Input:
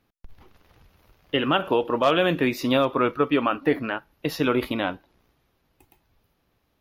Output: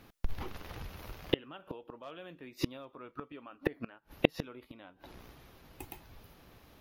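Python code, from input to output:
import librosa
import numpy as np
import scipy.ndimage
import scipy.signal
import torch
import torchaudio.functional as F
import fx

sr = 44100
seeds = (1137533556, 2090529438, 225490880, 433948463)

y = fx.gate_flip(x, sr, shuts_db=-20.0, range_db=-39)
y = F.gain(torch.from_numpy(y), 12.0).numpy()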